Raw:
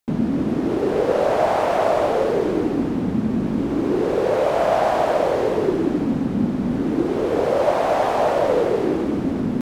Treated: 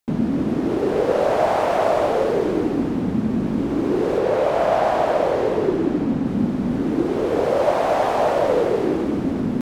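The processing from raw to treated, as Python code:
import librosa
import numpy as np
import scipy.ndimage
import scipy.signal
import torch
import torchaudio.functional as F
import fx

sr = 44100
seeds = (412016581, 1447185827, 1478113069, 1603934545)

y = fx.high_shelf(x, sr, hz=5500.0, db=-5.0, at=(4.18, 6.26))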